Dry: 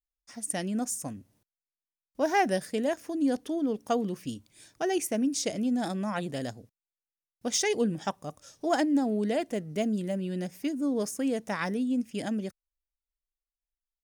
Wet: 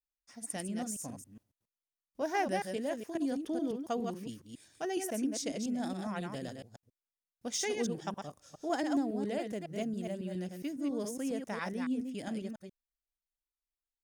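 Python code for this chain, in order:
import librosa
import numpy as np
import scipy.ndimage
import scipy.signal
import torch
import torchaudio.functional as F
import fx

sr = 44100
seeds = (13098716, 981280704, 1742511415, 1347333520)

y = fx.reverse_delay(x, sr, ms=138, wet_db=-5)
y = fx.band_squash(y, sr, depth_pct=100, at=(3.15, 3.71))
y = y * 10.0 ** (-7.5 / 20.0)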